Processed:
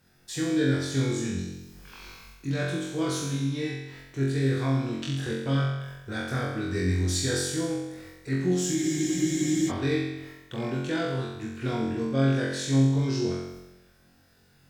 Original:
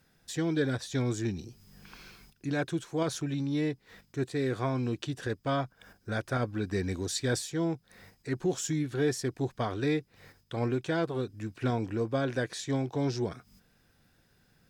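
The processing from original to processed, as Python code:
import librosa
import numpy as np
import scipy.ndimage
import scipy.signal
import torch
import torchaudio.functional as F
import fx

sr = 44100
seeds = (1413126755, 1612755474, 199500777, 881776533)

y = fx.dynamic_eq(x, sr, hz=730.0, q=0.94, threshold_db=-45.0, ratio=4.0, max_db=-7)
y = fx.room_flutter(y, sr, wall_m=3.8, rt60_s=0.98)
y = fx.spec_freeze(y, sr, seeds[0], at_s=8.77, hold_s=0.93)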